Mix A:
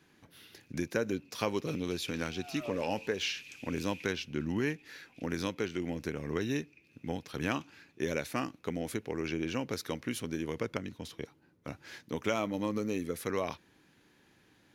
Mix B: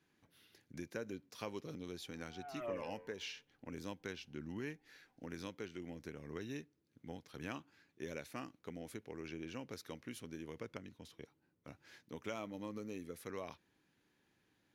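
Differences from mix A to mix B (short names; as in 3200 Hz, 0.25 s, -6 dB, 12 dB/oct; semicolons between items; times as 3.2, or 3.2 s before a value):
speech -12.0 dB; first sound: muted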